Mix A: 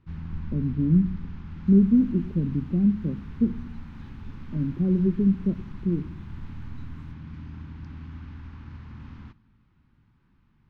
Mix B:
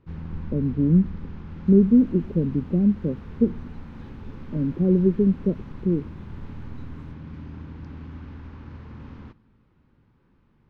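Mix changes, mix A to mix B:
speech: send −10.5 dB
master: add parametric band 490 Hz +13.5 dB 1.1 octaves

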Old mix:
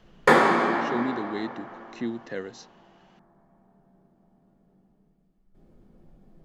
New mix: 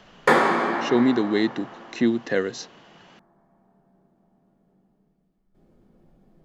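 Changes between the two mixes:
speech +11.0 dB
master: add low-shelf EQ 100 Hz −6.5 dB

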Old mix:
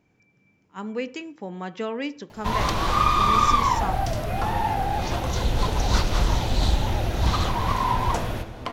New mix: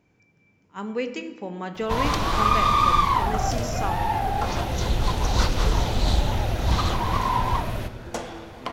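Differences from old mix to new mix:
speech: send on
first sound: entry −0.55 s

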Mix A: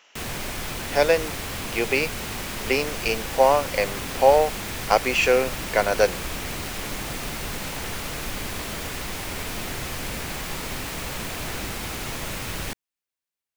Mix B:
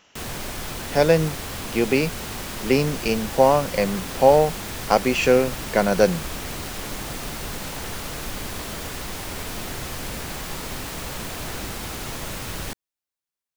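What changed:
speech: remove high-pass filter 450 Hz 12 dB per octave
master: add parametric band 2,300 Hz −3.5 dB 0.75 octaves

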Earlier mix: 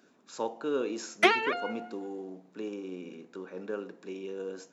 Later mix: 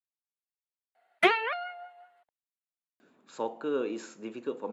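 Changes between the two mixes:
speech: entry +3.00 s
master: add parametric band 5,700 Hz −12.5 dB 0.57 octaves

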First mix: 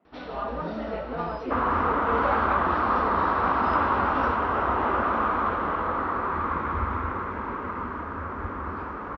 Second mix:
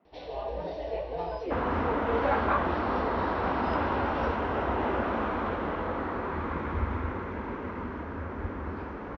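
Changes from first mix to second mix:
first sound: add phaser with its sweep stopped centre 550 Hz, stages 4
second sound: add parametric band 1,200 Hz −11.5 dB 0.69 octaves

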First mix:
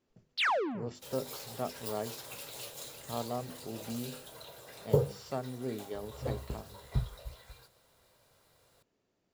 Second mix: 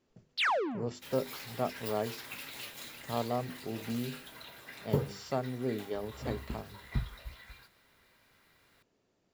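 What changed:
speech +3.5 dB
second sound: add octave-band graphic EQ 125/250/500/2,000/8,000 Hz −5/+9/−10/+10/−6 dB

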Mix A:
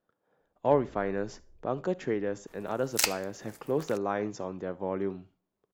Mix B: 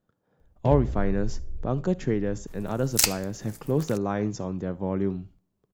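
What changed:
first sound +11.0 dB
master: add bass and treble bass +14 dB, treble +7 dB

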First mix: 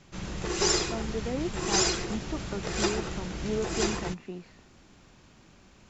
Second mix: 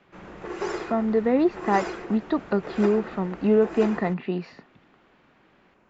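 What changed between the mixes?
speech +12.0 dB
background: add three-way crossover with the lows and the highs turned down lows −15 dB, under 240 Hz, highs −22 dB, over 2,200 Hz

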